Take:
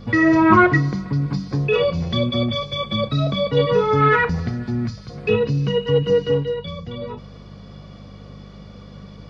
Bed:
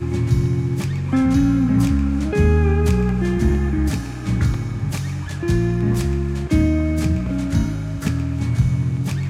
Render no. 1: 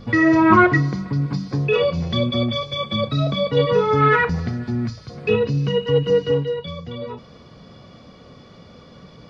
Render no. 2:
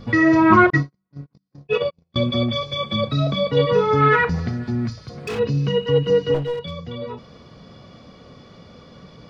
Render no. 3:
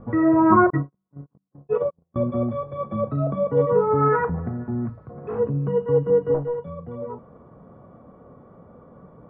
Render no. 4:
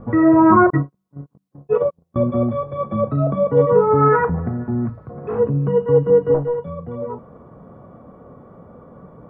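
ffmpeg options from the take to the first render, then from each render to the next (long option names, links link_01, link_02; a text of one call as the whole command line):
ffmpeg -i in.wav -af "bandreject=frequency=50:width_type=h:width=4,bandreject=frequency=100:width_type=h:width=4,bandreject=frequency=150:width_type=h:width=4,bandreject=frequency=200:width_type=h:width=4" out.wav
ffmpeg -i in.wav -filter_complex "[0:a]asettb=1/sr,asplit=3[link_01][link_02][link_03];[link_01]atrim=end=0.704[link_04];[link_02]atrim=start=0.7:end=2.16,asetpts=PTS-STARTPTS,afade=type=in:duration=0.004:curve=qsin,afade=type=out:start_time=1.456:duration=0.004:curve=qsin,agate=range=-49dB:threshold=-18dB:ratio=16:release=100:detection=peak[link_05];[link_03]atrim=start=2.156[link_06];[link_04][link_05]acrossfade=duration=0.004:curve1=hsin:curve2=qsin[link_07];[link_07][link_06]acrossfade=duration=0.004:curve1=qsin:curve2=hsin,asplit=3[link_08][link_09][link_10];[link_08]afade=type=out:start_time=4.9:duration=0.02[link_11];[link_09]volume=25dB,asoftclip=hard,volume=-25dB,afade=type=in:start_time=4.9:duration=0.02,afade=type=out:start_time=5.38:duration=0.02[link_12];[link_10]afade=type=in:start_time=5.38:duration=0.02[link_13];[link_11][link_12][link_13]amix=inputs=3:normalize=0,asettb=1/sr,asplit=3[link_14][link_15][link_16];[link_14]atrim=end=6.344[link_17];[link_15]atrim=start=6.34:end=6.75,asetpts=PTS-STARTPTS,afade=type=in:duration=0.004:curve=qsin,afade=type=out:start_time=0.406:duration=0.004:curve=qsin,aeval=exprs='clip(val(0),-1,0.0668)':channel_layout=same[link_18];[link_16]atrim=start=6.746[link_19];[link_17][link_18]acrossfade=duration=0.004:curve1=hsin:curve2=qsin[link_20];[link_20][link_19]acrossfade=duration=0.004:curve1=qsin:curve2=hsin" out.wav
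ffmpeg -i in.wav -af "lowpass=frequency=1200:width=0.5412,lowpass=frequency=1200:width=1.3066,lowshelf=frequency=240:gain=-5.5" out.wav
ffmpeg -i in.wav -af "volume=5dB,alimiter=limit=-3dB:level=0:latency=1" out.wav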